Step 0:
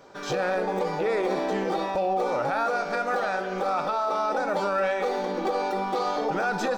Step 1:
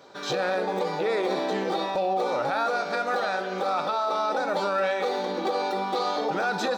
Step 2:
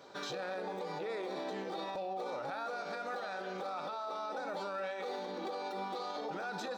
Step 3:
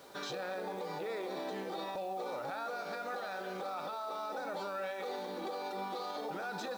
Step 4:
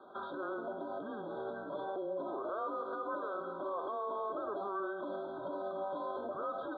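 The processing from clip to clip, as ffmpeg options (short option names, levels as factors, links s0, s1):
-af "highpass=f=140:p=1,equalizer=f=3900:t=o:w=0.36:g=8.5"
-af "alimiter=level_in=1.5:limit=0.0631:level=0:latency=1:release=143,volume=0.668,volume=0.631"
-af "acrusher=bits=9:mix=0:aa=0.000001"
-af "highpass=f=580:t=q:w=0.5412,highpass=f=580:t=q:w=1.307,lowpass=f=2800:t=q:w=0.5176,lowpass=f=2800:t=q:w=0.7071,lowpass=f=2800:t=q:w=1.932,afreqshift=-200,afftfilt=real='re*eq(mod(floor(b*sr/1024/1600),2),0)':imag='im*eq(mod(floor(b*sr/1024/1600),2),0)':win_size=1024:overlap=0.75,volume=1.41"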